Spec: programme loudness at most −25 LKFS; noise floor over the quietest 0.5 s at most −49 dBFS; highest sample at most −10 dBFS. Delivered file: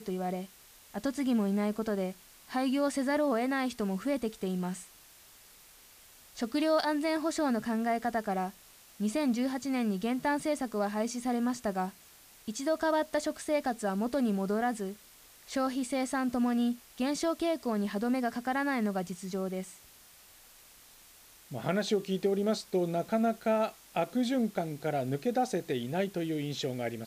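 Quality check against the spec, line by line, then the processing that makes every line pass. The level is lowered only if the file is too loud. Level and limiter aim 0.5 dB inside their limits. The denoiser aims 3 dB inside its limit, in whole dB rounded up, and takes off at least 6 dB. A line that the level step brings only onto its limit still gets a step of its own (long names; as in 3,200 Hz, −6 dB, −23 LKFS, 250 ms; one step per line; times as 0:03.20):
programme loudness −31.5 LKFS: in spec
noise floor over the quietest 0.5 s −57 dBFS: in spec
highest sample −17.5 dBFS: in spec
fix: no processing needed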